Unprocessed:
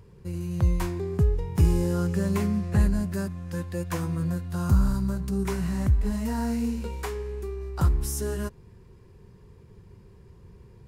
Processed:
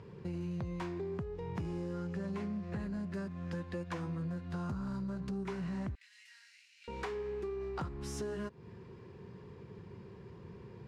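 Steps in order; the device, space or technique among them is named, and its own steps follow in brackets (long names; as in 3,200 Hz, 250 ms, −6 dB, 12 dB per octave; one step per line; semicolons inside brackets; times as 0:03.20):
AM radio (band-pass filter 140–3,900 Hz; downward compressor 6 to 1, threshold −40 dBFS, peak gain reduction 17.5 dB; soft clipping −34 dBFS, distortion −22 dB)
0:05.95–0:06.88: Butterworth high-pass 1,900 Hz 36 dB per octave
level +4.5 dB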